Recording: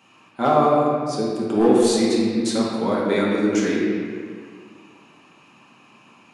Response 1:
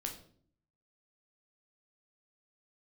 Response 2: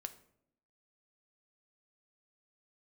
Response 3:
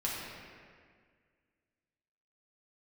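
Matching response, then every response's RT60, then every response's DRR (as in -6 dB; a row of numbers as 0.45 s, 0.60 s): 3; 0.55 s, 0.70 s, 1.9 s; 2.0 dB, 9.0 dB, -6.0 dB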